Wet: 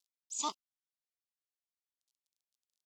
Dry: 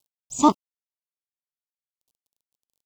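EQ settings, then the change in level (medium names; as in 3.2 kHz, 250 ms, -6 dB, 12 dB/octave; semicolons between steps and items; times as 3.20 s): band-pass filter 4.9 kHz, Q 1; -4.0 dB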